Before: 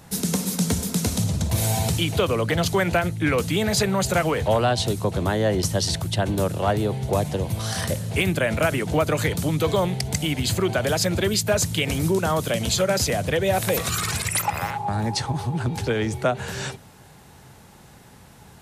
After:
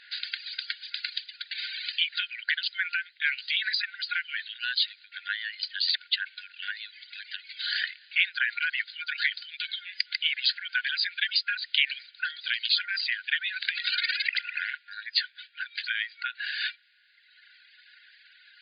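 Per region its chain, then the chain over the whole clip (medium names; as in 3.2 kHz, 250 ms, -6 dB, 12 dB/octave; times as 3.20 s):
1.73–4.51 s: high-pass 710 Hz 24 dB/octave + careless resampling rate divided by 3×, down filtered, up zero stuff
whole clip: compression, threshold -21 dBFS; reverb removal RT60 1.5 s; FFT band-pass 1.4–4.9 kHz; trim +6 dB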